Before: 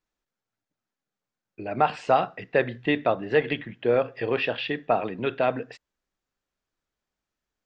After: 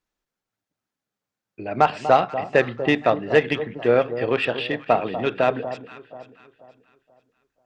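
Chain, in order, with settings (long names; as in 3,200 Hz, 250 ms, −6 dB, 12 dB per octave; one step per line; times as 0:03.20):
harmonic generator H 7 −29 dB, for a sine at −7.5 dBFS
delay that swaps between a low-pass and a high-pass 242 ms, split 1,100 Hz, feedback 58%, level −11 dB
level +4.5 dB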